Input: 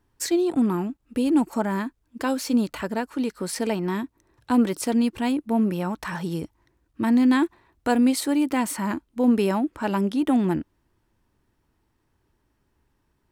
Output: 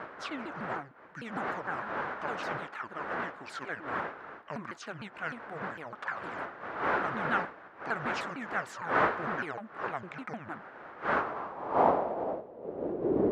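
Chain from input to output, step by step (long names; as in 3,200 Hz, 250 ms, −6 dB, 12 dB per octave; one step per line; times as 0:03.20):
pitch shifter swept by a sawtooth −11 semitones, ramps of 152 ms
wind on the microphone 510 Hz −25 dBFS
band-pass filter sweep 1,500 Hz → 360 Hz, 0:11.06–0:13.11
level +2.5 dB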